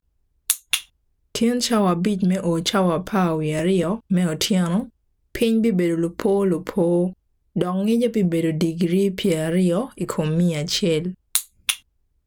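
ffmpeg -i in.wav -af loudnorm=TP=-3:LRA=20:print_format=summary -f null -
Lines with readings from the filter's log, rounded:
Input Integrated:    -21.6 LUFS
Input True Peak:      -1.6 dBTP
Input LRA:             1.8 LU
Input Threshold:     -31.9 LUFS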